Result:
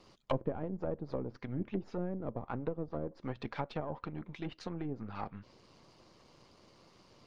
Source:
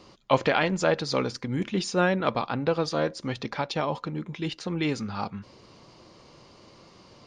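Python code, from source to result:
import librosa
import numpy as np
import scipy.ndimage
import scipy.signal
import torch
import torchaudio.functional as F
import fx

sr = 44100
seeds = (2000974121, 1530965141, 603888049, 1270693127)

y = np.where(x < 0.0, 10.0 ** (-7.0 / 20.0) * x, x)
y = fx.env_lowpass_down(y, sr, base_hz=450.0, full_db=-24.0)
y = fx.hpss(y, sr, part='harmonic', gain_db=-5)
y = y * 10.0 ** (-4.5 / 20.0)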